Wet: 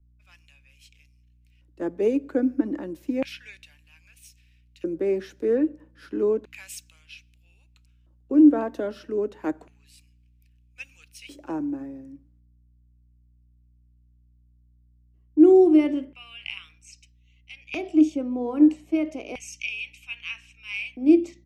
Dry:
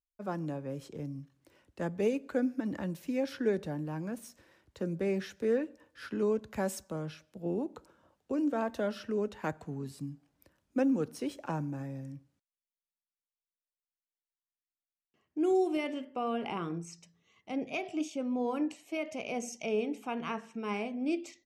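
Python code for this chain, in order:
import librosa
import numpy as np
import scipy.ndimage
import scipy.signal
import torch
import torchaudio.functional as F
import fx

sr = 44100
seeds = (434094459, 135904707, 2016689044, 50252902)

y = fx.filter_lfo_highpass(x, sr, shape='square', hz=0.31, low_hz=310.0, high_hz=2500.0, q=5.1)
y = fx.add_hum(y, sr, base_hz=60, snr_db=27)
y = fx.band_widen(y, sr, depth_pct=40)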